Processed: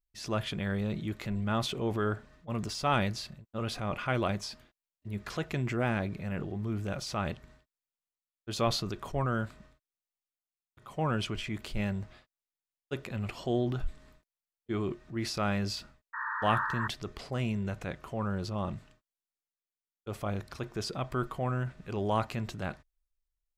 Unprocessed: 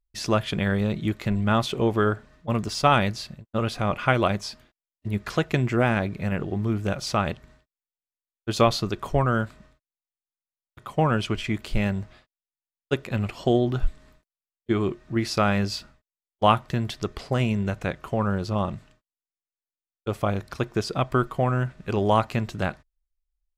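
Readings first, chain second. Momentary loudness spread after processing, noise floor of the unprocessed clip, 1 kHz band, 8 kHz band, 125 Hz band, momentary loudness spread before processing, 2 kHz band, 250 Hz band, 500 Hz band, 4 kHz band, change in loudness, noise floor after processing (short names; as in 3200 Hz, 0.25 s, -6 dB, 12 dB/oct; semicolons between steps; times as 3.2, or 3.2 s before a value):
10 LU, under -85 dBFS, -8.5 dB, -5.5 dB, -8.0 dB, 10 LU, -7.0 dB, -8.5 dB, -9.5 dB, -6.0 dB, -8.5 dB, under -85 dBFS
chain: painted sound noise, 16.13–16.88, 860–1900 Hz -27 dBFS; transient shaper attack -4 dB, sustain +5 dB; gain -8 dB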